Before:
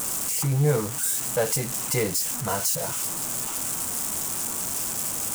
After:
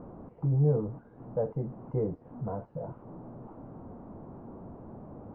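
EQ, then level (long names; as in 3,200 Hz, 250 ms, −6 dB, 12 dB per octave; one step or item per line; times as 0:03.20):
Bessel low-pass filter 530 Hz, order 4
−2.5 dB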